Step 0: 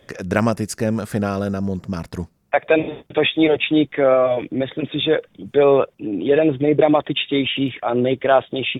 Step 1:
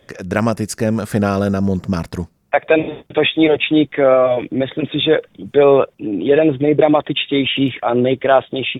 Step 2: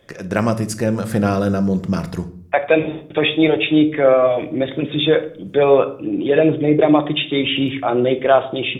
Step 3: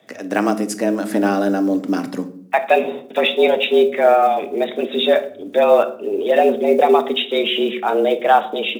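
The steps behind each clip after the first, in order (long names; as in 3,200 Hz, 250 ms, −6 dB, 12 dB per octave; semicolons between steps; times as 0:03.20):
automatic gain control gain up to 8.5 dB
rectangular room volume 630 cubic metres, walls furnished, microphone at 0.8 metres; level −2 dB
one scale factor per block 7 bits; frequency shifter +98 Hz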